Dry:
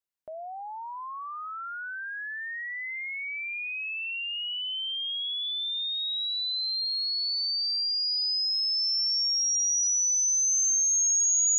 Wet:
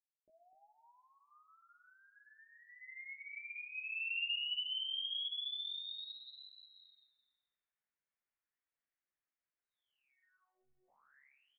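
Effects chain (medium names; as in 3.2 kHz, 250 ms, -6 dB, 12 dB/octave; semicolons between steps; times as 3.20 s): fade-in on the opening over 3.38 s; feedback delay 252 ms, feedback 18%, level -11 dB; 2.81–3.39 s: dynamic bell 2 kHz, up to +5 dB, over -51 dBFS, Q 4; saturation -24 dBFS, distortion -16 dB; on a send at -17.5 dB: reverberation RT60 1.4 s, pre-delay 20 ms; 10.10–10.88 s: on the sum: robot voice 370 Hz; chorus voices 4, 0.58 Hz, delay 17 ms, depth 3.2 ms; resampled via 8 kHz; low-pass sweep 340 Hz -> 1.9 kHz, 2.05–4.22 s; trim +1.5 dB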